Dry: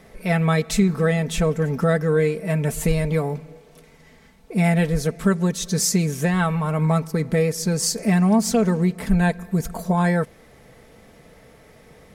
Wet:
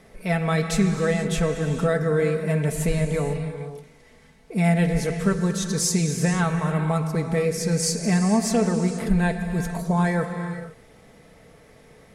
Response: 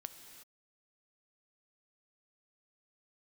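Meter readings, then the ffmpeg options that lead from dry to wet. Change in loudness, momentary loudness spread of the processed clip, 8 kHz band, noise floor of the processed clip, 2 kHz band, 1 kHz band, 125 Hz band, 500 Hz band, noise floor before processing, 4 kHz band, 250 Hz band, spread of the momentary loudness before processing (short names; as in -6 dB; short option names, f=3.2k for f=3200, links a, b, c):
-2.0 dB, 8 LU, -1.5 dB, -52 dBFS, -1.5 dB, -2.0 dB, -2.0 dB, -1.5 dB, -51 dBFS, -2.0 dB, -2.0 dB, 5 LU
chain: -filter_complex "[1:a]atrim=start_sample=2205,afade=t=out:st=0.3:d=0.01,atrim=end_sample=13671,asetrate=22050,aresample=44100[a];[0:a][a]afir=irnorm=-1:irlink=0,volume=-1.5dB"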